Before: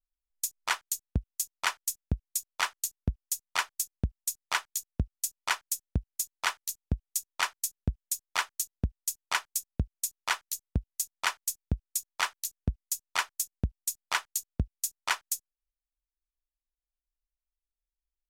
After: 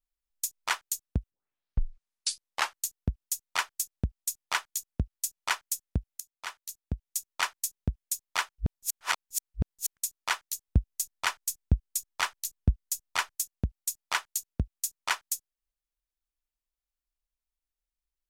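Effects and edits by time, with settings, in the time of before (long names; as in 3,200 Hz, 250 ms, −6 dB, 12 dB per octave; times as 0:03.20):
0:01.30: tape start 1.48 s
0:06.20–0:07.33: fade in, from −18 dB
0:08.49–0:09.97: reverse
0:10.68–0:13.35: low-shelf EQ 130 Hz +8.5 dB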